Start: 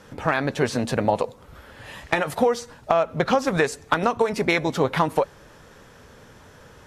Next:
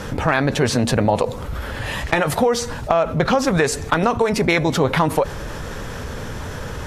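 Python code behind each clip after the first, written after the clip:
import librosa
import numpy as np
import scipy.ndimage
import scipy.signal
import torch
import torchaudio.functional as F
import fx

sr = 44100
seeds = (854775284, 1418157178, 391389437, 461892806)

y = fx.low_shelf(x, sr, hz=93.0, db=11.0)
y = fx.env_flatten(y, sr, amount_pct=50)
y = y * librosa.db_to_amplitude(1.0)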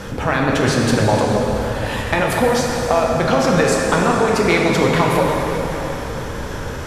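y = fx.rev_plate(x, sr, seeds[0], rt60_s=4.2, hf_ratio=0.8, predelay_ms=0, drr_db=-2.0)
y = y * librosa.db_to_amplitude(-1.5)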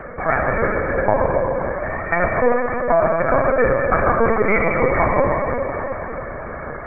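y = fx.brickwall_bandpass(x, sr, low_hz=350.0, high_hz=2400.0)
y = fx.lpc_vocoder(y, sr, seeds[1], excitation='pitch_kept', order=8)
y = y * librosa.db_to_amplitude(1.0)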